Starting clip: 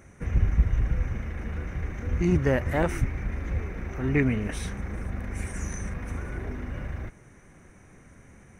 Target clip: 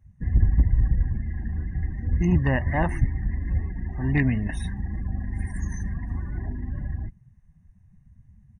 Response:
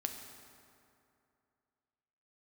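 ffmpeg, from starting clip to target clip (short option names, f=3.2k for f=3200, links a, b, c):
-af "aeval=exprs='0.224*(abs(mod(val(0)/0.224+3,4)-2)-1)':c=same,aecho=1:1:1.1:0.68,afftdn=nr=26:nf=-36"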